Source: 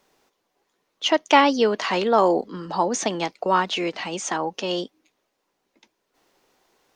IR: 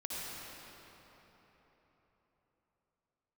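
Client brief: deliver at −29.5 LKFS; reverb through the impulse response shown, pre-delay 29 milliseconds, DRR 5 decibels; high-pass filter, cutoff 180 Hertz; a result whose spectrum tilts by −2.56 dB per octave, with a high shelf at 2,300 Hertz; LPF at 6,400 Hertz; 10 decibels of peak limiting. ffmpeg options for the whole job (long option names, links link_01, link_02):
-filter_complex "[0:a]highpass=180,lowpass=6400,highshelf=frequency=2300:gain=5.5,alimiter=limit=-12dB:level=0:latency=1,asplit=2[link_01][link_02];[1:a]atrim=start_sample=2205,adelay=29[link_03];[link_02][link_03]afir=irnorm=-1:irlink=0,volume=-7.5dB[link_04];[link_01][link_04]amix=inputs=2:normalize=0,volume=-6.5dB"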